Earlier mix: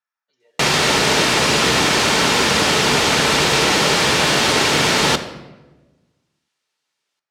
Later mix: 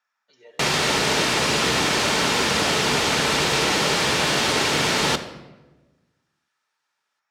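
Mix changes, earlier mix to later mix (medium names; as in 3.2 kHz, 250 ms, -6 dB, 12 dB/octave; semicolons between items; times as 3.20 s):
speech +11.5 dB; background -5.0 dB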